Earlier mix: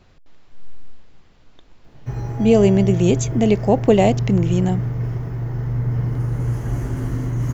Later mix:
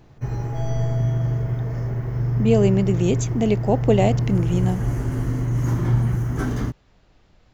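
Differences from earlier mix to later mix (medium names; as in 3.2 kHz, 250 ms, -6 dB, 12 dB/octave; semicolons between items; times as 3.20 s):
speech -4.0 dB; background: entry -1.85 s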